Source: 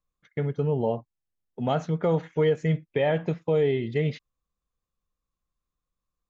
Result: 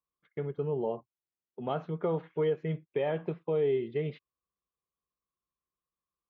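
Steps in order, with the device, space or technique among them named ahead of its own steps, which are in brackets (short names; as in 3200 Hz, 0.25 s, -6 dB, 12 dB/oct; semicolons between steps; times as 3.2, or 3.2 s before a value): guitar cabinet (speaker cabinet 80–3500 Hz, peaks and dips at 110 Hz -9 dB, 250 Hz -3 dB, 380 Hz +8 dB, 1100 Hz +6 dB, 1900 Hz -4 dB); gain -8 dB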